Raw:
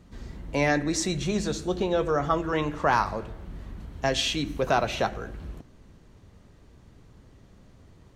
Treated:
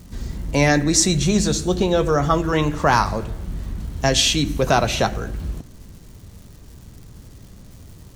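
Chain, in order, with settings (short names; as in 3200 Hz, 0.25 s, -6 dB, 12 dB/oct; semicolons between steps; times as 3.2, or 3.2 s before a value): crackle 360/s -51 dBFS; tone controls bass +6 dB, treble +9 dB; gain +5.5 dB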